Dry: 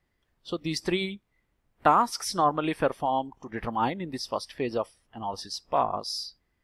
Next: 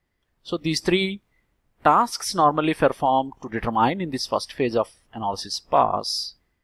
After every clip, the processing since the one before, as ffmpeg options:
-af "dynaudnorm=f=320:g=3:m=7dB"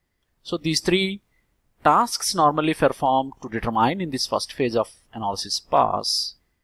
-af "bass=f=250:g=1,treble=f=4k:g=5"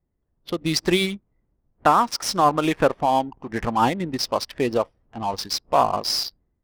-af "adynamicsmooth=sensitivity=7.5:basefreq=720"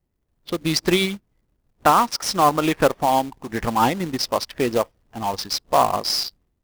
-af "acrusher=bits=3:mode=log:mix=0:aa=0.000001,volume=1dB"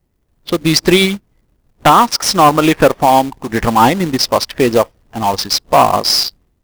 -af "aeval=exprs='0.891*sin(PI/2*2*val(0)/0.891)':c=same"

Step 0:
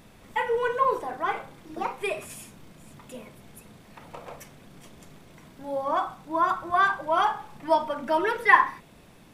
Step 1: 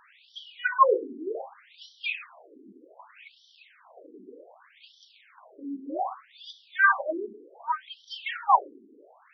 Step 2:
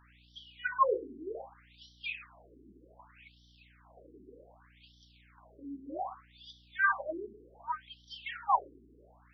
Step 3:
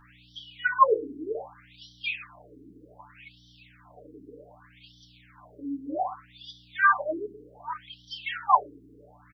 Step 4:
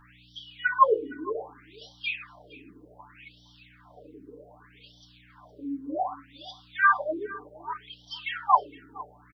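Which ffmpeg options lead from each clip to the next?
-af "afftfilt=real='re*between(b*sr/1024,300*pow(4300/300,0.5+0.5*sin(2*PI*0.65*pts/sr))/1.41,300*pow(4300/300,0.5+0.5*sin(2*PI*0.65*pts/sr))*1.41)':imag='im*between(b*sr/1024,300*pow(4300/300,0.5+0.5*sin(2*PI*0.65*pts/sr))/1.41,300*pow(4300/300,0.5+0.5*sin(2*PI*0.65*pts/sr))*1.41)':win_size=1024:overlap=0.75,volume=6dB"
-af "aeval=exprs='val(0)+0.00178*(sin(2*PI*60*n/s)+sin(2*PI*2*60*n/s)/2+sin(2*PI*3*60*n/s)/3+sin(2*PI*4*60*n/s)/4+sin(2*PI*5*60*n/s)/5)':c=same,volume=-7.5dB"
-af "aecho=1:1:6.8:0.71,volume=5.5dB"
-af "aecho=1:1:463:0.1"

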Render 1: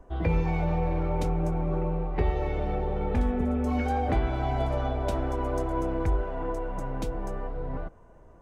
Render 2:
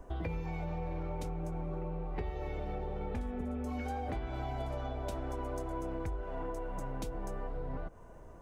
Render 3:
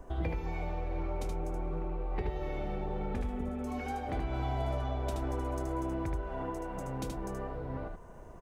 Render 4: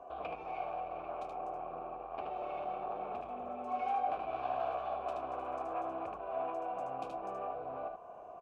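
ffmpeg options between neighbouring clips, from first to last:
-af "highshelf=f=5k:g=7.5,acompressor=threshold=-36dB:ratio=6,volume=1dB"
-af "aecho=1:1:76:0.631,volume=1.5dB"
-filter_complex "[0:a]aeval=exprs='0.0794*sin(PI/2*2.82*val(0)/0.0794)':c=same,asplit=3[a][b][c];[a]bandpass=f=730:t=q:w=8,volume=0dB[d];[b]bandpass=f=1.09k:t=q:w=8,volume=-6dB[e];[c]bandpass=f=2.44k:t=q:w=8,volume=-9dB[f];[d][e][f]amix=inputs=3:normalize=0"

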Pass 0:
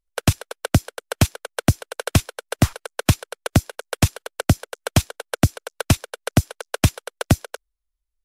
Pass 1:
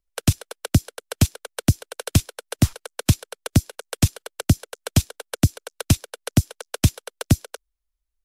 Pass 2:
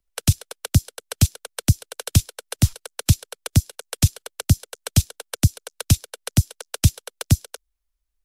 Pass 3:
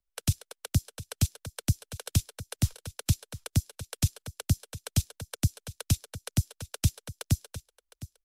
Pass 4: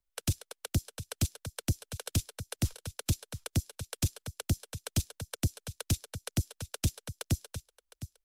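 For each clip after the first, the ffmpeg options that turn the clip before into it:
-filter_complex "[0:a]acrossover=split=410|3000[a][b][c];[b]acompressor=threshold=-39dB:ratio=2[d];[a][d][c]amix=inputs=3:normalize=0"
-filter_complex "[0:a]acrossover=split=170|3000[a][b][c];[b]acompressor=threshold=-39dB:ratio=2[d];[a][d][c]amix=inputs=3:normalize=0,volume=2.5dB"
-af "aecho=1:1:710:0.15,volume=-9dB"
-af "asoftclip=type=tanh:threshold=-20.5dB"

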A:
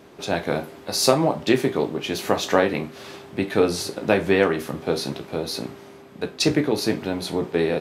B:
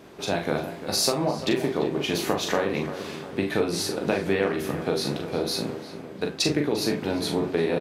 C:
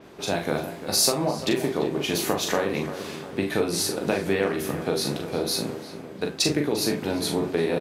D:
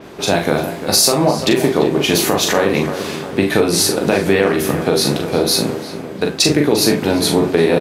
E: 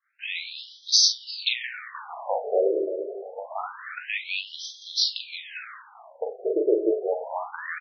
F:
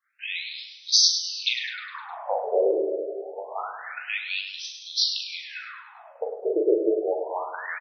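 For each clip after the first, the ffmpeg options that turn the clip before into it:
-filter_complex "[0:a]acompressor=threshold=-21dB:ratio=6,asplit=2[a][b];[b]adelay=41,volume=-5.5dB[c];[a][c]amix=inputs=2:normalize=0,asplit=2[d][e];[e]adelay=347,lowpass=f=2.2k:p=1,volume=-11dB,asplit=2[f][g];[g]adelay=347,lowpass=f=2.2k:p=1,volume=0.53,asplit=2[h][i];[i]adelay=347,lowpass=f=2.2k:p=1,volume=0.53,asplit=2[j][k];[k]adelay=347,lowpass=f=2.2k:p=1,volume=0.53,asplit=2[l][m];[m]adelay=347,lowpass=f=2.2k:p=1,volume=0.53,asplit=2[n][o];[o]adelay=347,lowpass=f=2.2k:p=1,volume=0.53[p];[d][f][h][j][l][n][p]amix=inputs=7:normalize=0"
-af "adynamicequalizer=threshold=0.00631:dfrequency=6000:dqfactor=0.7:tfrequency=6000:tqfactor=0.7:attack=5:release=100:ratio=0.375:range=3.5:mode=boostabove:tftype=highshelf"
-af "alimiter=level_in=12dB:limit=-1dB:release=50:level=0:latency=1,volume=-1dB"
-af "equalizer=f=620:w=0.6:g=-2.5,agate=range=-33dB:threshold=-23dB:ratio=3:detection=peak,afftfilt=real='re*between(b*sr/1024,460*pow(4500/460,0.5+0.5*sin(2*PI*0.26*pts/sr))/1.41,460*pow(4500/460,0.5+0.5*sin(2*PI*0.26*pts/sr))*1.41)':imag='im*between(b*sr/1024,460*pow(4500/460,0.5+0.5*sin(2*PI*0.26*pts/sr))/1.41,460*pow(4500/460,0.5+0.5*sin(2*PI*0.26*pts/sr))*1.41)':win_size=1024:overlap=0.75,volume=-2.5dB"
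-af "aecho=1:1:103|206|309|412|515|618:0.376|0.188|0.094|0.047|0.0235|0.0117"

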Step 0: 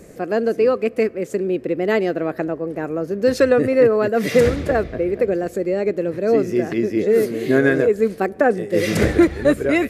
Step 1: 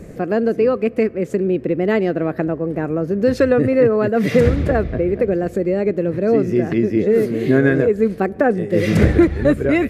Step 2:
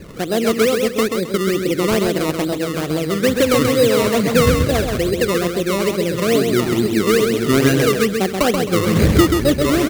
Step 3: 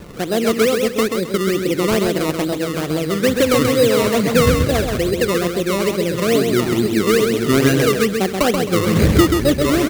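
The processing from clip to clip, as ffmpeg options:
-filter_complex "[0:a]asplit=2[a][b];[b]acompressor=threshold=-23dB:ratio=6,volume=0dB[c];[a][c]amix=inputs=2:normalize=0,bass=f=250:g=8,treble=f=4k:g=-7,volume=-3dB"
-af "acrusher=samples=19:mix=1:aa=0.000001:lfo=1:lforange=19:lforate=2.3,aecho=1:1:132|264|396|528:0.562|0.169|0.0506|0.0152,volume=-1dB"
-af "acrusher=bits=6:mix=0:aa=0.000001"

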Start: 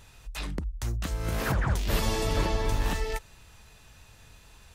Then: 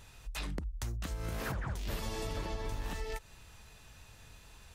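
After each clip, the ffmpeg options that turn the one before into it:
-af "acompressor=threshold=-32dB:ratio=6,volume=-2dB"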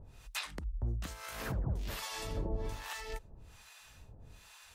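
-filter_complex "[0:a]acrossover=split=730[a][b];[a]aeval=exprs='val(0)*(1-1/2+1/2*cos(2*PI*1.2*n/s))':c=same[c];[b]aeval=exprs='val(0)*(1-1/2-1/2*cos(2*PI*1.2*n/s))':c=same[d];[c][d]amix=inputs=2:normalize=0,volume=4dB"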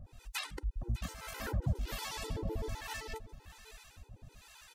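-af "aecho=1:1:601:0.15,afftfilt=real='re*gt(sin(2*PI*7.8*pts/sr)*(1-2*mod(floor(b*sr/1024/260),2)),0)':imag='im*gt(sin(2*PI*7.8*pts/sr)*(1-2*mod(floor(b*sr/1024/260),2)),0)':win_size=1024:overlap=0.75,volume=3.5dB"

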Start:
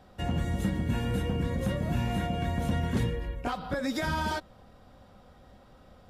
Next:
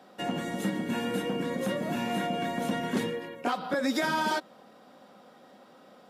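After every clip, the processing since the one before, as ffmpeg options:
-af "highpass=f=210:w=0.5412,highpass=f=210:w=1.3066,volume=3.5dB"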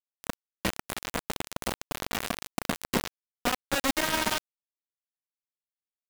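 -filter_complex "[0:a]highshelf=f=7.9k:g=6.5,acrossover=split=3000[a][b];[b]acompressor=threshold=-45dB:ratio=4:attack=1:release=60[c];[a][c]amix=inputs=2:normalize=0,acrusher=bits=3:mix=0:aa=0.000001"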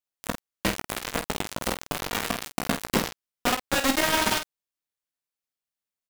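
-af "aecho=1:1:19|49:0.335|0.376,volume=3dB"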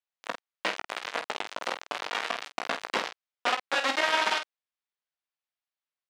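-af "highpass=590,lowpass=4k"

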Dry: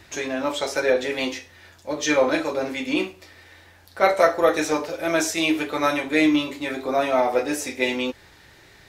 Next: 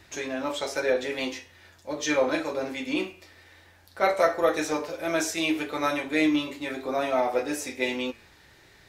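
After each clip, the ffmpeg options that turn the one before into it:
-af "bandreject=f=114.7:t=h:w=4,bandreject=f=229.4:t=h:w=4,bandreject=f=344.1:t=h:w=4,bandreject=f=458.8:t=h:w=4,bandreject=f=573.5:t=h:w=4,bandreject=f=688.2:t=h:w=4,bandreject=f=802.9:t=h:w=4,bandreject=f=917.6:t=h:w=4,bandreject=f=1.0323k:t=h:w=4,bandreject=f=1.147k:t=h:w=4,bandreject=f=1.2617k:t=h:w=4,bandreject=f=1.3764k:t=h:w=4,bandreject=f=1.4911k:t=h:w=4,bandreject=f=1.6058k:t=h:w=4,bandreject=f=1.7205k:t=h:w=4,bandreject=f=1.8352k:t=h:w=4,bandreject=f=1.9499k:t=h:w=4,bandreject=f=2.0646k:t=h:w=4,bandreject=f=2.1793k:t=h:w=4,bandreject=f=2.294k:t=h:w=4,bandreject=f=2.4087k:t=h:w=4,bandreject=f=2.5234k:t=h:w=4,bandreject=f=2.6381k:t=h:w=4,bandreject=f=2.7528k:t=h:w=4,bandreject=f=2.8675k:t=h:w=4,bandreject=f=2.9822k:t=h:w=4,bandreject=f=3.0969k:t=h:w=4,bandreject=f=3.2116k:t=h:w=4,bandreject=f=3.3263k:t=h:w=4,volume=-4.5dB"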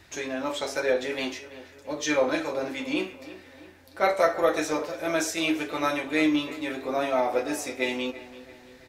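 -filter_complex "[0:a]asplit=2[a][b];[b]adelay=335,lowpass=f=3k:p=1,volume=-15.5dB,asplit=2[c][d];[d]adelay=335,lowpass=f=3k:p=1,volume=0.51,asplit=2[e][f];[f]adelay=335,lowpass=f=3k:p=1,volume=0.51,asplit=2[g][h];[h]adelay=335,lowpass=f=3k:p=1,volume=0.51,asplit=2[i][j];[j]adelay=335,lowpass=f=3k:p=1,volume=0.51[k];[a][c][e][g][i][k]amix=inputs=6:normalize=0"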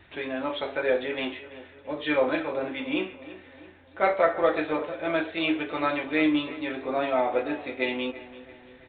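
-af "aresample=8000,aresample=44100"

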